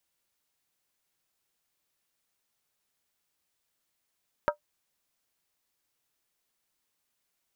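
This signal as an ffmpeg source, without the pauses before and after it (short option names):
-f lavfi -i "aevalsrc='0.112*pow(10,-3*t/0.11)*sin(2*PI*593*t)+0.0841*pow(10,-3*t/0.087)*sin(2*PI*945.2*t)+0.0631*pow(10,-3*t/0.075)*sin(2*PI*1266.6*t)+0.0473*pow(10,-3*t/0.073)*sin(2*PI*1361.5*t)+0.0355*pow(10,-3*t/0.068)*sin(2*PI*1573.2*t)':d=0.63:s=44100"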